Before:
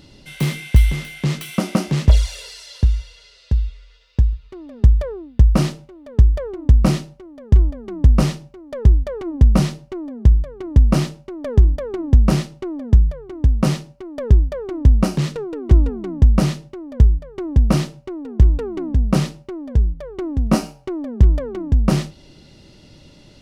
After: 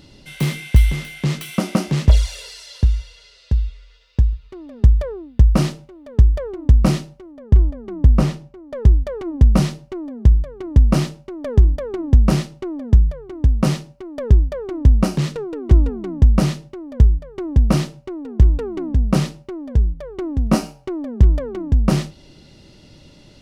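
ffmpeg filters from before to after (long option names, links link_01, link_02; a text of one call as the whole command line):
ffmpeg -i in.wav -filter_complex "[0:a]asplit=3[link_01][link_02][link_03];[link_01]afade=type=out:start_time=7.31:duration=0.02[link_04];[link_02]highshelf=frequency=2700:gain=-7,afade=type=in:start_time=7.31:duration=0.02,afade=type=out:start_time=8.73:duration=0.02[link_05];[link_03]afade=type=in:start_time=8.73:duration=0.02[link_06];[link_04][link_05][link_06]amix=inputs=3:normalize=0" out.wav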